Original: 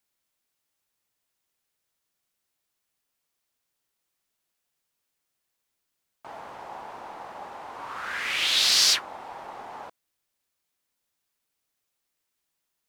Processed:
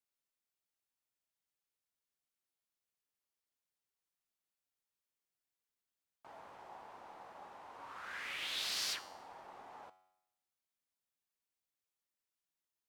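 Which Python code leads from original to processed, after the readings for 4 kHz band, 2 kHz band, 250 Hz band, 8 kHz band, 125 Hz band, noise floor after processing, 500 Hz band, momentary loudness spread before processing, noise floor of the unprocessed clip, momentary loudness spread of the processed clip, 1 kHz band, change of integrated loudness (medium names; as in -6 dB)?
-18.0 dB, -14.5 dB, -13.0 dB, -18.5 dB, no reading, under -85 dBFS, -13.0 dB, 23 LU, -81 dBFS, 19 LU, -13.5 dB, -18.0 dB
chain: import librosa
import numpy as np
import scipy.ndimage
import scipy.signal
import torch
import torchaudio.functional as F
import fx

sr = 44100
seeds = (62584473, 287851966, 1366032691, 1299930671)

y = fx.dynamic_eq(x, sr, hz=5500.0, q=0.71, threshold_db=-35.0, ratio=4.0, max_db=-6)
y = fx.comb_fb(y, sr, f0_hz=93.0, decay_s=0.85, harmonics='all', damping=0.0, mix_pct=60)
y = y * 10.0 ** (-6.5 / 20.0)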